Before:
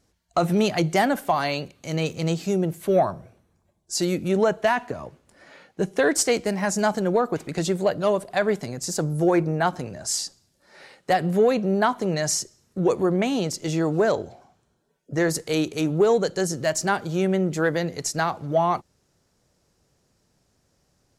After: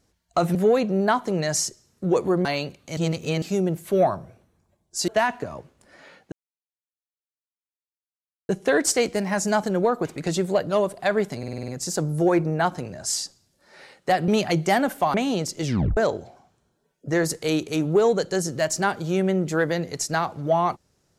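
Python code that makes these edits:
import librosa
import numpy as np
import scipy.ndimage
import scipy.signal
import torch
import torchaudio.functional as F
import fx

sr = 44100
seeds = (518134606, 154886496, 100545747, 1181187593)

y = fx.edit(x, sr, fx.swap(start_s=0.55, length_s=0.86, other_s=11.29, other_length_s=1.9),
    fx.reverse_span(start_s=1.93, length_s=0.45),
    fx.cut(start_s=4.04, length_s=0.52),
    fx.insert_silence(at_s=5.8, length_s=2.17),
    fx.stutter(start_s=8.69, slice_s=0.05, count=7),
    fx.tape_stop(start_s=13.69, length_s=0.33), tone=tone)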